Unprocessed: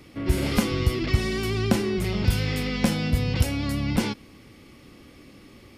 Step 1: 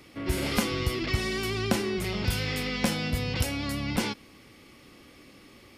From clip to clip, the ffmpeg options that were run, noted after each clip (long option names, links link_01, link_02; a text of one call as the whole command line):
ffmpeg -i in.wav -af "lowshelf=frequency=350:gain=-7.5" out.wav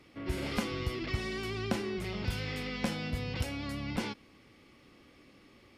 ffmpeg -i in.wav -af "highshelf=frequency=7100:gain=-11,volume=-6dB" out.wav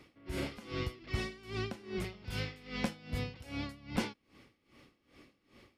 ffmpeg -i in.wav -af "aeval=exprs='val(0)*pow(10,-20*(0.5-0.5*cos(2*PI*2.5*n/s))/20)':channel_layout=same,volume=1.5dB" out.wav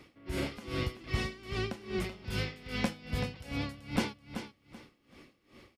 ffmpeg -i in.wav -af "aecho=1:1:382|764|1146:0.335|0.0804|0.0193,volume=3dB" out.wav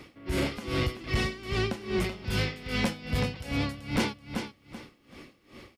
ffmpeg -i in.wav -af "asoftclip=type=tanh:threshold=-27dB,volume=7.5dB" out.wav